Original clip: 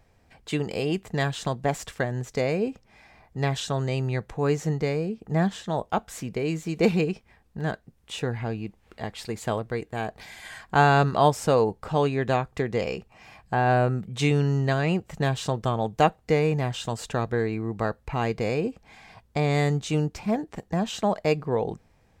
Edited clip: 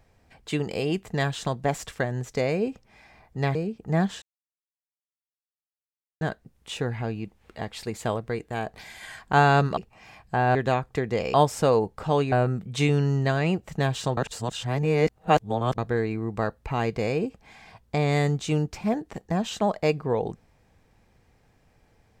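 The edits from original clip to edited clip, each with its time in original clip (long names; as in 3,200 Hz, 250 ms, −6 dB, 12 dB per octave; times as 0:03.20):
0:03.55–0:04.97: remove
0:05.64–0:07.63: silence
0:11.19–0:12.17: swap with 0:12.96–0:13.74
0:15.59–0:17.20: reverse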